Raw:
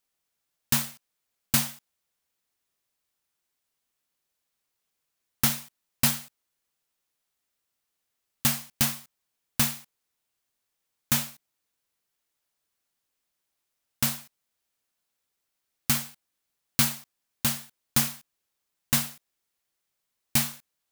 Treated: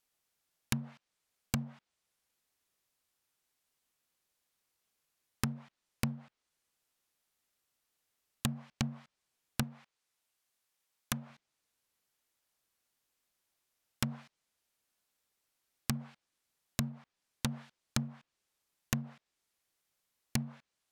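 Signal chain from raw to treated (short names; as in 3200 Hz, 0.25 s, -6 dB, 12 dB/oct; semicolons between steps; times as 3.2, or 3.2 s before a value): treble ducked by the level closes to 320 Hz, closed at -21.5 dBFS; 9.63–11.3 low shelf 420 Hz -7.5 dB; compressor 3:1, threshold -29 dBFS, peak gain reduction 5.5 dB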